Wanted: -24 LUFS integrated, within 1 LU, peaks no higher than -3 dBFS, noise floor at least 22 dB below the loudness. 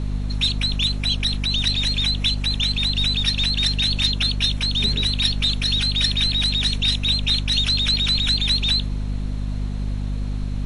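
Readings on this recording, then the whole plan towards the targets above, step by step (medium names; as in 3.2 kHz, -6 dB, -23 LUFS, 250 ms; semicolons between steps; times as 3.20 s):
hum 50 Hz; highest harmonic 250 Hz; hum level -22 dBFS; noise floor -26 dBFS; noise floor target -42 dBFS; loudness -20.0 LUFS; peak level -6.5 dBFS; loudness target -24.0 LUFS
-> de-hum 50 Hz, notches 5; noise print and reduce 16 dB; trim -4 dB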